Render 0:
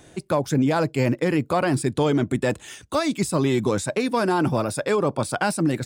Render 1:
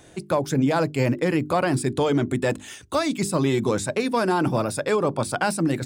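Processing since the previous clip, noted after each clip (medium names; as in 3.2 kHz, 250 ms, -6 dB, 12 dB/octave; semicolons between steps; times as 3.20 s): hum notches 50/100/150/200/250/300/350/400 Hz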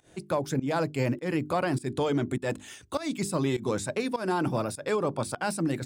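volume shaper 101 bpm, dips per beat 1, -19 dB, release 166 ms; trim -5.5 dB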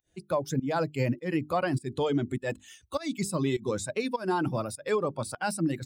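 expander on every frequency bin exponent 1.5; trim +2 dB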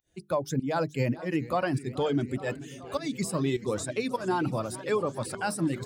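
modulated delay 429 ms, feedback 80%, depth 156 cents, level -17.5 dB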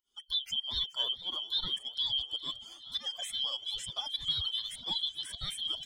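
four frequency bands reordered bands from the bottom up 2413; Shepard-style flanger rising 1.4 Hz; trim -2 dB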